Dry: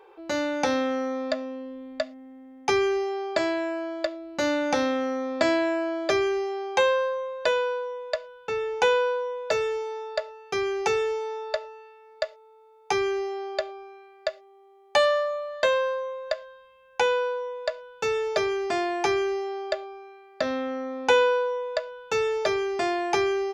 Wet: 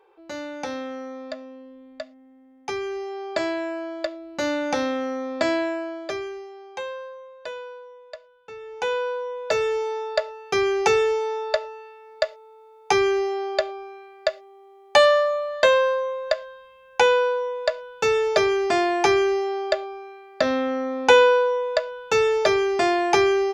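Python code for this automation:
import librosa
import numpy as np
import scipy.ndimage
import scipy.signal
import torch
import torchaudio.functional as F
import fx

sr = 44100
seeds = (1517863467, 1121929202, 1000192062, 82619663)

y = fx.gain(x, sr, db=fx.line((2.82, -6.5), (3.4, 0.0), (5.6, 0.0), (6.51, -11.0), (8.59, -11.0), (8.91, -3.5), (9.86, 5.5)))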